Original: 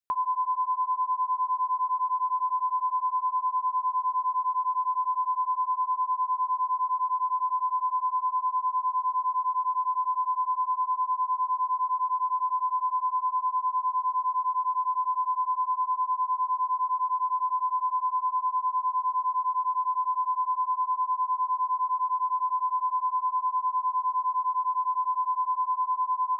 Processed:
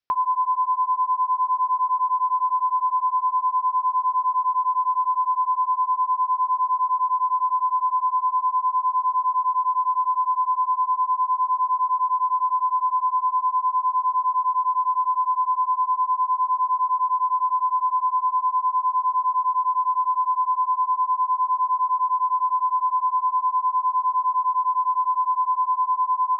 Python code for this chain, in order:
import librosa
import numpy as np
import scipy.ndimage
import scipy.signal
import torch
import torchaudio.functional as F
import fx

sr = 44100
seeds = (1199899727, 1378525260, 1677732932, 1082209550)

y = scipy.signal.sosfilt(scipy.signal.ellip(4, 1.0, 40, 5500.0, 'lowpass', fs=sr, output='sos'), x)
y = y * 10.0 ** (6.0 / 20.0)